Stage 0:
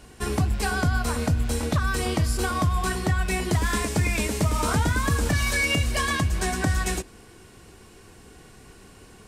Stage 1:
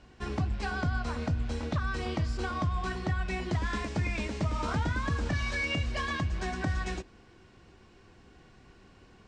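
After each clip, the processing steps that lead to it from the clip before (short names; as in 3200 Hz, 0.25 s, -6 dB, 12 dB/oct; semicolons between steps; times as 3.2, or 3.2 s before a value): Bessel low-pass 4300 Hz, order 6; notch 440 Hz, Q 12; gain -7 dB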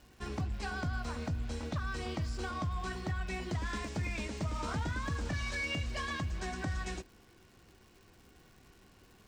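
high shelf 8000 Hz +12 dB; in parallel at -5.5 dB: overloaded stage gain 27.5 dB; on the sum: crackle 310/s -44 dBFS; gain -8.5 dB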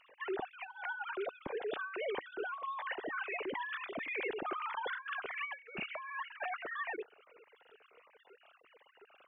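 sine-wave speech; negative-ratio compressor -41 dBFS, ratio -1; cascading phaser falling 1.5 Hz; gain +2.5 dB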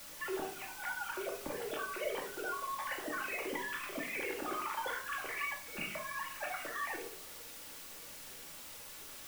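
in parallel at -11 dB: requantised 6-bit, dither triangular; on the sum: shoebox room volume 670 m³, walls furnished, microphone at 2.4 m; gain -5 dB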